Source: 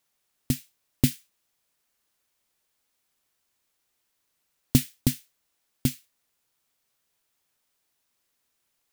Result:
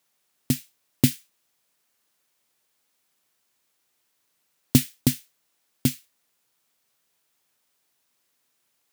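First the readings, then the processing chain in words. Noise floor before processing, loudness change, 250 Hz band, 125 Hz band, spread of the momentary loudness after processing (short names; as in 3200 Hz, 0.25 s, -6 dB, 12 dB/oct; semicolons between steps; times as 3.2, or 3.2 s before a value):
-76 dBFS, +2.5 dB, +3.0 dB, +1.5 dB, 13 LU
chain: HPF 110 Hz 12 dB/oct; gain +3.5 dB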